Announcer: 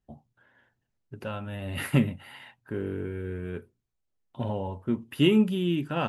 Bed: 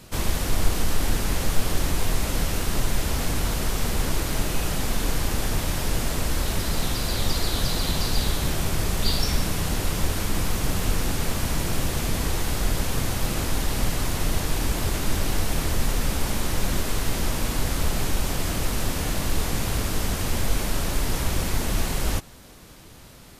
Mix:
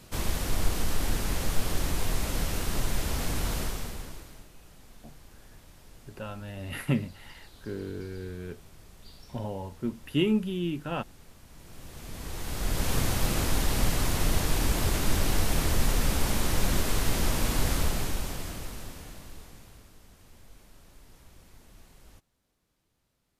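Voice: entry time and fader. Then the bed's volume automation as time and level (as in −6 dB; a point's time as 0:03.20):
4.95 s, −4.0 dB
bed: 0:03.60 −5 dB
0:04.51 −27.5 dB
0:11.46 −27.5 dB
0:12.91 −1.5 dB
0:17.73 −1.5 dB
0:19.98 −29.5 dB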